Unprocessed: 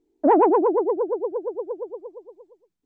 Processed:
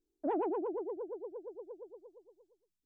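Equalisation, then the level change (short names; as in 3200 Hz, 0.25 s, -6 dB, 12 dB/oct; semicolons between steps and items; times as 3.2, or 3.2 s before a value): ten-band EQ 125 Hz -7 dB, 250 Hz -9 dB, 500 Hz -8 dB, 1000 Hz -12 dB, 2000 Hz -10 dB; -5.0 dB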